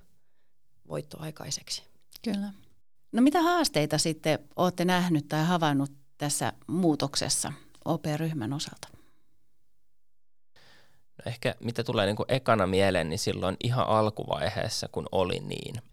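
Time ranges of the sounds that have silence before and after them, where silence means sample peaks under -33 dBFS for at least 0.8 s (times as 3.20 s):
0.91–8.84 s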